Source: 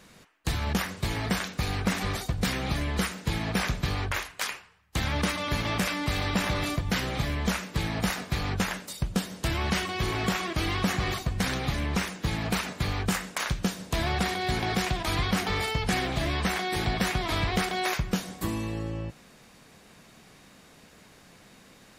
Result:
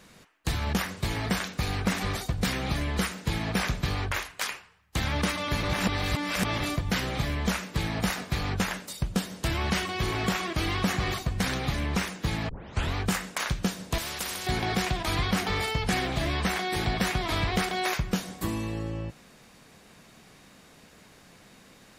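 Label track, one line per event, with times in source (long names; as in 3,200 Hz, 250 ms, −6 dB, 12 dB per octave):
5.630000	6.600000	reverse
12.490000	12.490000	tape start 0.46 s
13.980000	14.470000	every bin compressed towards the loudest bin 4 to 1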